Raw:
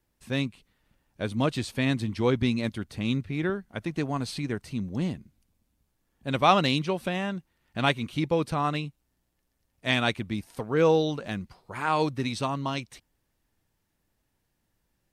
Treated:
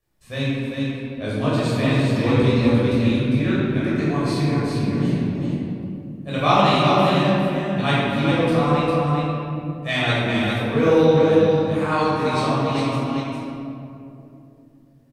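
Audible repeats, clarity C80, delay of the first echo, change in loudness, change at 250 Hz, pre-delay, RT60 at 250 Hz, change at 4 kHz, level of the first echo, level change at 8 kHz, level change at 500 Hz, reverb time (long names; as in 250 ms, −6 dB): 1, −3.5 dB, 402 ms, +8.0 dB, +9.5 dB, 11 ms, 4.1 s, +5.5 dB, −4.0 dB, +3.5 dB, +9.0 dB, 2.8 s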